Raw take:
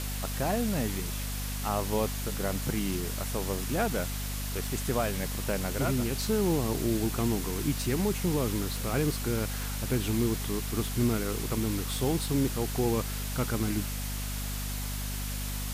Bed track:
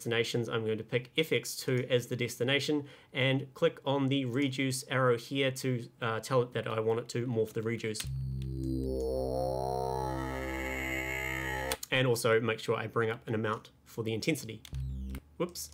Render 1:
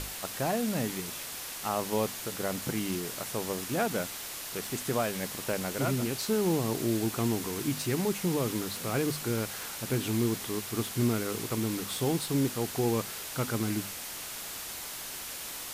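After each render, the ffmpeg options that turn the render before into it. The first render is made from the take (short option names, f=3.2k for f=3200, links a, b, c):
-af "bandreject=f=50:t=h:w=6,bandreject=f=100:t=h:w=6,bandreject=f=150:t=h:w=6,bandreject=f=200:t=h:w=6,bandreject=f=250:t=h:w=6"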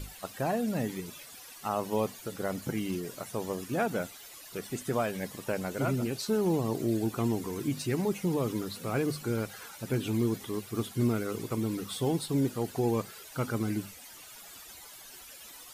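-af "afftdn=nr=14:nf=-40"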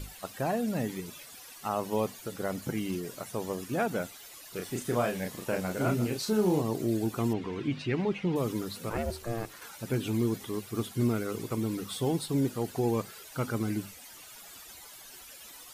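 -filter_complex "[0:a]asettb=1/sr,asplit=3[a][b][c];[a]atrim=end=4.524[d];[b]atrim=start=4.52:end=6.62,asetpts=PTS-STARTPTS,afade=t=in:d=0.004:c=qsin,afade=t=out:st=2.096:d=0.004:c=qsin,asplit=2[e][f];[f]adelay=33,volume=-4dB[g];[e][g]amix=inputs=2:normalize=0,atrim=end_sample=92610[h];[c]atrim=start=6.616[i];[d][h]acrossfade=d=0.004:c1=hsin:c2=qsin[j];[j][i]acrossfade=d=0.004:c1=qsin:c2=hsin,asettb=1/sr,asplit=3[k][l][m];[k]atrim=end=7.334[n];[l]atrim=start=7.33:end=8.36,asetpts=PTS-STARTPTS,afade=t=in:d=0.004:c=qsin,afade=t=out:st=1.026:d=0.004:c=qsin,lowpass=f=2.9k:t=q:w=1.7[o];[m]atrim=start=8.356[p];[n][o]acrossfade=d=0.004:c1=hsin:c2=qsin[q];[q][p]acrossfade=d=0.004:c1=qsin:c2=hsin,asplit=3[r][s][t];[r]afade=t=out:st=8.89:d=0.02[u];[s]aeval=exprs='val(0)*sin(2*PI*230*n/s)':c=same,afade=t=in:st=8.89:d=0.02,afade=t=out:st=9.6:d=0.02[v];[t]afade=t=in:st=9.6:d=0.02[w];[u][v][w]amix=inputs=3:normalize=0"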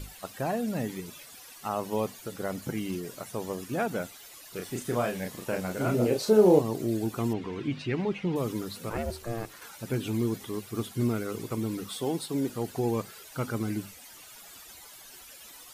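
-filter_complex "[0:a]asettb=1/sr,asplit=3[a][b][c];[a]atrim=end=5.944[d];[b]atrim=start=5.94:end=6.59,asetpts=PTS-STARTPTS,afade=t=in:d=0.004:c=qsin,afade=t=out:st=0.646:d=0.004:c=qsin,equalizer=f=540:t=o:w=1.1:g=14[e];[c]atrim=start=6.586[f];[d][e]acrossfade=d=0.004:c1=hsin:c2=qsin[g];[g][f]acrossfade=d=0.004:c1=qsin:c2=hsin,asettb=1/sr,asplit=3[h][i][j];[h]atrim=end=11.894[k];[i]atrim=start=11.89:end=12.5,asetpts=PTS-STARTPTS,afade=t=in:d=0.004:c=qsin,afade=t=out:st=0.606:d=0.004:c=qsin,highpass=190[l];[j]atrim=start=12.496[m];[k][l]acrossfade=d=0.004:c1=hsin:c2=qsin[n];[n][m]acrossfade=d=0.004:c1=qsin:c2=hsin"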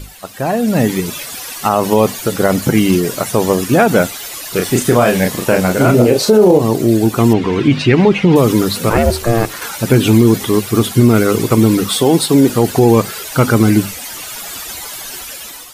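-af "dynaudnorm=f=290:g=5:m=12dB,alimiter=level_in=9.5dB:limit=-1dB:release=50:level=0:latency=1"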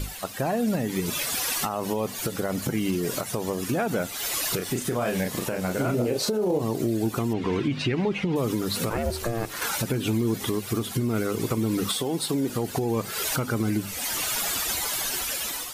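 -af "acompressor=threshold=-19dB:ratio=6,alimiter=limit=-16dB:level=0:latency=1:release=482"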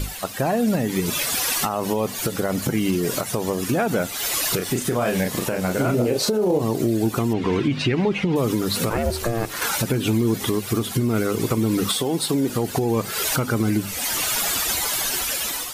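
-af "volume=4.5dB"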